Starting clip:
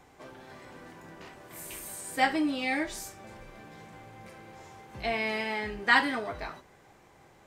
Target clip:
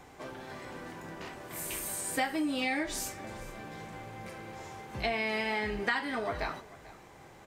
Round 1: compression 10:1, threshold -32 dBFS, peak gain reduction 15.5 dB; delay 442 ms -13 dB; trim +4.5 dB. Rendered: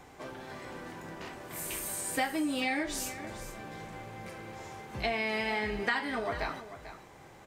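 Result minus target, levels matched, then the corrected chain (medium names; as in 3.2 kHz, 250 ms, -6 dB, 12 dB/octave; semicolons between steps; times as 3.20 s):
echo-to-direct +7 dB
compression 10:1, threshold -32 dBFS, peak gain reduction 15.5 dB; delay 442 ms -20 dB; trim +4.5 dB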